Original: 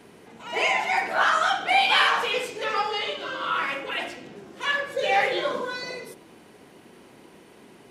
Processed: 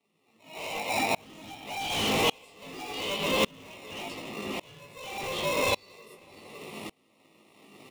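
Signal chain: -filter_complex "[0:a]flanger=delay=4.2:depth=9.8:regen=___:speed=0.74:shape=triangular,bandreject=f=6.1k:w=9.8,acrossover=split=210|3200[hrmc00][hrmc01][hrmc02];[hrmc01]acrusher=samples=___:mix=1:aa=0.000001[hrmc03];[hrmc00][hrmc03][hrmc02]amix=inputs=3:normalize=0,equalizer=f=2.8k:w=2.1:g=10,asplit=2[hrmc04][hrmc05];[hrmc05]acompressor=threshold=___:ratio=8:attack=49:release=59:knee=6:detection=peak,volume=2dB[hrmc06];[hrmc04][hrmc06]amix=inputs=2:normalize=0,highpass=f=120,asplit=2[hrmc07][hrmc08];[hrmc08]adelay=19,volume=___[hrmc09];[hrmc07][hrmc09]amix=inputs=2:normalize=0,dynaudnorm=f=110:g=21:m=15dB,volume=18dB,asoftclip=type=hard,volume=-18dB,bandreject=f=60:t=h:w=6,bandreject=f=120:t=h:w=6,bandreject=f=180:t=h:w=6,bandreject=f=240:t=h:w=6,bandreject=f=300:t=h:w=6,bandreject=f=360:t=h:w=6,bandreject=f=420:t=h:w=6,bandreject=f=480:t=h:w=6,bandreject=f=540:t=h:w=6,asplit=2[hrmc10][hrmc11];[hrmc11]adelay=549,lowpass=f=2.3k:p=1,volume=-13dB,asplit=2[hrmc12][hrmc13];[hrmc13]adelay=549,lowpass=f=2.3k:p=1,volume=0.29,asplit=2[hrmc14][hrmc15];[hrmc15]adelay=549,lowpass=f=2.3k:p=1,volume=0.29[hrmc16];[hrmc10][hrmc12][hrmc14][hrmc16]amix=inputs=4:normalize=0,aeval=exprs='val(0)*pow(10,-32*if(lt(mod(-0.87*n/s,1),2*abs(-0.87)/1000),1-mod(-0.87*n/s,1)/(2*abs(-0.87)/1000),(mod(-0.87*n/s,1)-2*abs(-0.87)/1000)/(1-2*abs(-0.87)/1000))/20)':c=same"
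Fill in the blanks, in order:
31, 28, -39dB, -5dB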